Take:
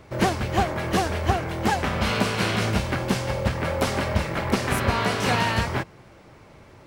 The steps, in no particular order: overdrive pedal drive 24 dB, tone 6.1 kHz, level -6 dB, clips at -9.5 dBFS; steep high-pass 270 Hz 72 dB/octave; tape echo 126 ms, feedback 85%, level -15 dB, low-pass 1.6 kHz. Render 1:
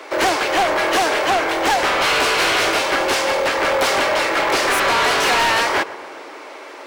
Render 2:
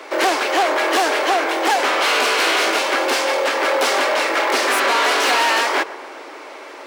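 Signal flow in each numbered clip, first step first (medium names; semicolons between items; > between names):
steep high-pass > overdrive pedal > tape echo; overdrive pedal > steep high-pass > tape echo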